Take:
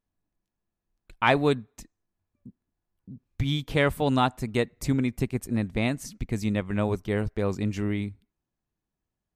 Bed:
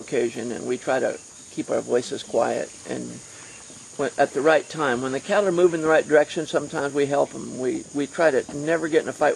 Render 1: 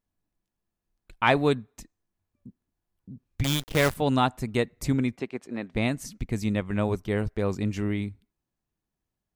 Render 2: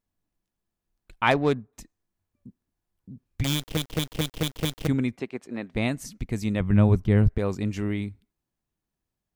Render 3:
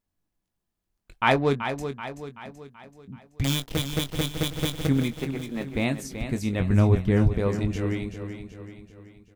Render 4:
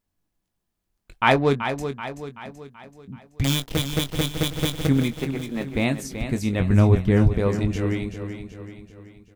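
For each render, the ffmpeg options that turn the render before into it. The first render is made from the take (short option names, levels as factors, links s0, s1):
-filter_complex "[0:a]asettb=1/sr,asplit=3[s0][s1][s2];[s0]atrim=end=3.444[s3];[s1]atrim=start=3.44:end=3.96,asetpts=PTS-STARTPTS,afade=t=in:d=0.004:c=qsin,afade=t=out:st=0.516:d=0.004:c=qsin,acrusher=bits=5:dc=4:mix=0:aa=0.000001[s4];[s2]atrim=start=3.956[s5];[s3][s4]acrossfade=d=0.004:c1=hsin:c2=qsin[s6];[s6][s5]acrossfade=d=0.004:c1=qsin:c2=hsin,asplit=3[s7][s8][s9];[s7]afade=t=out:st=5.15:d=0.02[s10];[s8]highpass=320,lowpass=4100,afade=t=in:st=5.15:d=0.02,afade=t=out:st=5.74:d=0.02[s11];[s9]afade=t=in:st=5.74:d=0.02[s12];[s10][s11][s12]amix=inputs=3:normalize=0"
-filter_complex "[0:a]asettb=1/sr,asplit=3[s0][s1][s2];[s0]atrim=end=1.314[s3];[s1]atrim=start=1.31:end=1.73,asetpts=PTS-STARTPTS,afade=t=in:d=0.004:c=qsin,afade=t=out:st=0.416:d=0.004:c=qsin,adynamicsmooth=sensitivity=2.5:basefreq=1200[s4];[s2]atrim=start=1.726[s5];[s3][s4]acrossfade=d=0.004:c1=hsin:c2=qsin[s6];[s6][s5]acrossfade=d=0.004:c1=qsin:c2=hsin,asettb=1/sr,asplit=3[s7][s8][s9];[s7]atrim=end=6.604[s10];[s8]atrim=start=6.6:end=7.38,asetpts=PTS-STARTPTS,afade=t=in:d=0.004:c=qsin,afade=t=out:st=0.776:d=0.004:c=qsin,bass=f=250:g=12,treble=f=4000:g=-5[s11];[s9]atrim=start=7.376[s12];[s10][s11]acrossfade=d=0.004:c1=hsin:c2=qsin[s13];[s13][s12]acrossfade=d=0.004:c1=qsin:c2=hsin,asplit=7[s14][s15][s16][s17][s18][s19][s20];[s14]atrim=end=3.772[s21];[s15]atrim=start=3.548:end=3.772[s22];[s16]atrim=start=3.548:end=3.772[s23];[s17]atrim=start=3.548:end=3.772[s24];[s18]atrim=start=3.548:end=3.772[s25];[s19]atrim=start=3.548:end=3.772[s26];[s20]atrim=start=4.868[s27];[s21][s22]acrossfade=d=0.004:c1=hsin:c2=hsin[s28];[s28][s23]acrossfade=d=0.004:c1=hsin:c2=hsin[s29];[s29][s24]acrossfade=d=0.004:c1=hsin:c2=hsin[s30];[s30][s25]acrossfade=d=0.004:c1=hsin:c2=hsin[s31];[s31][s26]acrossfade=d=0.004:c1=hsin:c2=hsin[s32];[s32][s27]acrossfade=d=0.004:c1=hsin:c2=hsin"
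-filter_complex "[0:a]asplit=2[s0][s1];[s1]adelay=22,volume=0.355[s2];[s0][s2]amix=inputs=2:normalize=0,asplit=2[s3][s4];[s4]aecho=0:1:381|762|1143|1524|1905|2286:0.355|0.174|0.0852|0.0417|0.0205|0.01[s5];[s3][s5]amix=inputs=2:normalize=0"
-af "volume=1.41"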